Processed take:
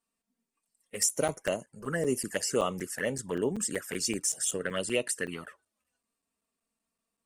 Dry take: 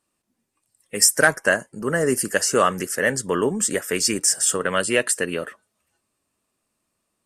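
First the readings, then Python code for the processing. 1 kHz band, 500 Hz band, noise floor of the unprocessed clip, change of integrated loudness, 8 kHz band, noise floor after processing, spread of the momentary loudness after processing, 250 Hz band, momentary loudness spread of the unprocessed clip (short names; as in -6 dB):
-13.0 dB, -9.0 dB, -77 dBFS, -10.5 dB, -10.5 dB, under -85 dBFS, 7 LU, -8.0 dB, 7 LU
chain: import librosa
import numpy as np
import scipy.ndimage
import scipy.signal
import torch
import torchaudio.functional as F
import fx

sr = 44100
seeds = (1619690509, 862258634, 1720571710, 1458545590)

y = fx.env_flanger(x, sr, rest_ms=4.4, full_db=-16.5)
y = fx.buffer_crackle(y, sr, first_s=0.9, period_s=0.19, block=256, kind='zero')
y = y * 10.0 ** (-7.0 / 20.0)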